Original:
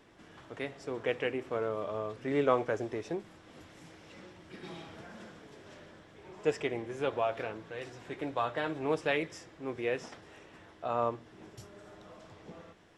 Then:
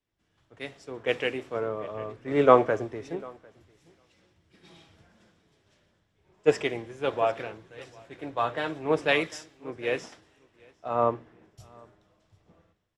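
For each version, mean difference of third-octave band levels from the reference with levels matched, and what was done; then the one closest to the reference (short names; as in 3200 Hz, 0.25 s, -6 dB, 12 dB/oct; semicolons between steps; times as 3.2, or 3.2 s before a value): 9.0 dB: on a send: feedback echo 0.75 s, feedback 21%, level -14 dB; on the sum: three-band expander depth 100%; gain +2 dB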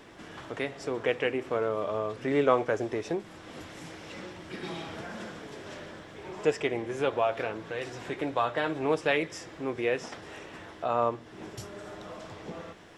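2.5 dB: low shelf 210 Hz -3 dB; in parallel at +2 dB: compressor, threshold -45 dBFS, peak gain reduction 22 dB; on the sum: gain +3 dB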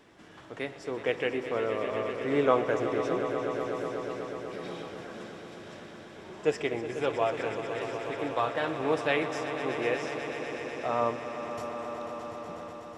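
5.0 dB: low shelf 79 Hz -7 dB; swelling echo 0.123 s, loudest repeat 5, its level -12 dB; gain +3 dB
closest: second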